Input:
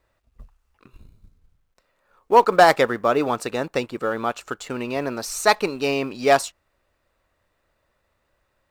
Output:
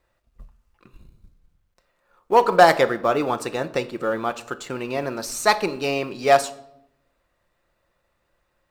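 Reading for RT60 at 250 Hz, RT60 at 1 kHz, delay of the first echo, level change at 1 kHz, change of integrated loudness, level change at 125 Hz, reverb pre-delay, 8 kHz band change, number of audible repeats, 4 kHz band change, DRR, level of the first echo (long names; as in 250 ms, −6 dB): 1.1 s, 0.70 s, no echo audible, 0.0 dB, −0.5 dB, +0.5 dB, 6 ms, −0.5 dB, no echo audible, −0.5 dB, 9.0 dB, no echo audible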